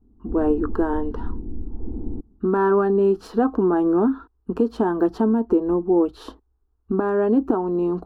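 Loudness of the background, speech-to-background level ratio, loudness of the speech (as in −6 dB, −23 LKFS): −34.5 LKFS, 13.0 dB, −21.5 LKFS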